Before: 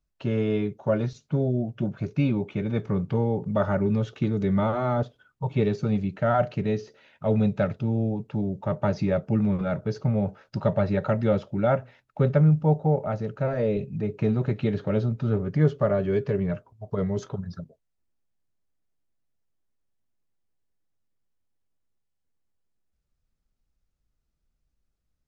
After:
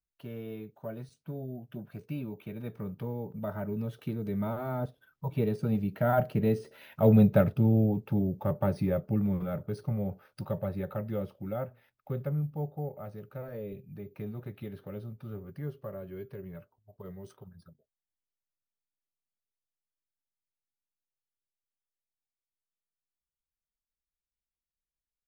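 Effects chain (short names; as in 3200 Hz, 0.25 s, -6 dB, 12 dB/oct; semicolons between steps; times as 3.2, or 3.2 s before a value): Doppler pass-by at 7.27, 12 m/s, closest 10 m; careless resampling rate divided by 3×, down filtered, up hold; tilt shelf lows +3 dB; mismatched tape noise reduction encoder only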